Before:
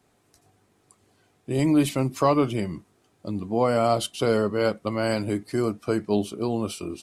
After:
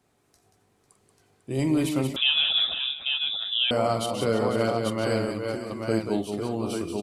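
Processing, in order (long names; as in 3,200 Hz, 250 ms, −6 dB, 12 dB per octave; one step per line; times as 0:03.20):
0:05.25–0:05.75: downward compressor, threshold −29 dBFS, peak gain reduction 9 dB
multi-tap delay 45/182/498/566/840 ms −10/−6.5/−12/−16.5/−4.5 dB
0:02.16–0:03.71: voice inversion scrambler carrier 3,700 Hz
level −3.5 dB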